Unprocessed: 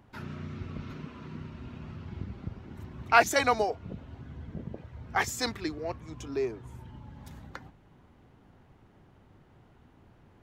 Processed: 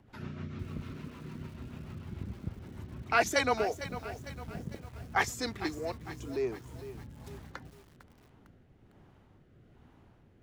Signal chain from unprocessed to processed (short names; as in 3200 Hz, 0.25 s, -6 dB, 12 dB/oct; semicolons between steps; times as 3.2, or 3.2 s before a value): rotary speaker horn 6.7 Hz, later 1.2 Hz, at 4.56; lo-fi delay 0.453 s, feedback 55%, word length 8-bit, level -12.5 dB